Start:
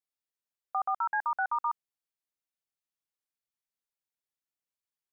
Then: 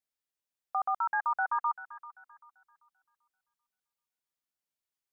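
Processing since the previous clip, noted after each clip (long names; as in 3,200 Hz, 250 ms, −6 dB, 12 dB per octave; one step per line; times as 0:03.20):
delay with a high-pass on its return 390 ms, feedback 31%, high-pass 1,400 Hz, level −10.5 dB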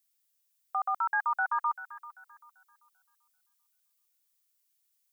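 spectral tilt +4.5 dB per octave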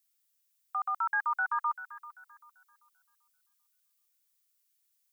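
high-pass filter 940 Hz 24 dB per octave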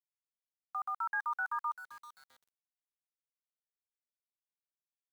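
centre clipping without the shift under −49.5 dBFS
level −5 dB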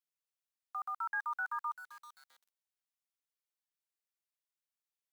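high-pass filter 930 Hz 6 dB per octave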